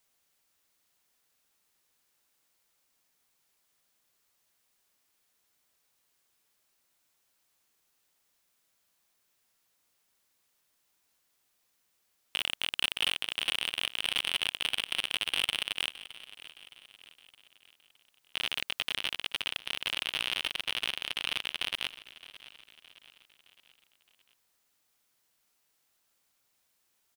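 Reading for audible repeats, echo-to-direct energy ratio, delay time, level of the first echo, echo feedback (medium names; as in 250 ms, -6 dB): 3, -16.0 dB, 616 ms, -17.0 dB, 49%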